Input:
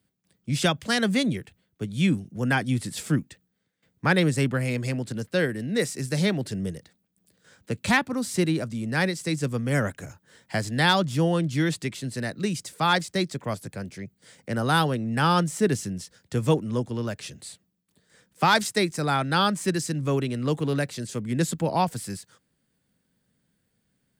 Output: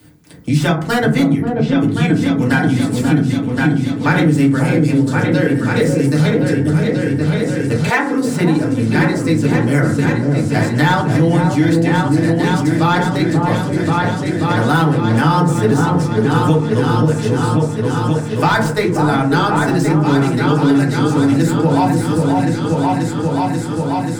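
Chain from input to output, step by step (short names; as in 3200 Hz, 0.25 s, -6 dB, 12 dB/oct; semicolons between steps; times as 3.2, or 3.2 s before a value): tracing distortion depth 0.048 ms; on a send: repeats that get brighter 0.535 s, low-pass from 750 Hz, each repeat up 2 oct, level -3 dB; on the sum: FDN reverb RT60 0.44 s, low-frequency decay 1.5×, high-frequency decay 0.35×, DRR -3.5 dB; in parallel at +0.5 dB: limiter -6.5 dBFS, peak gain reduction 7 dB; 7.89–8.54 on the sum: HPF 390 Hz -> 110 Hz 24 dB/oct; three-band squash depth 70%; gain -5 dB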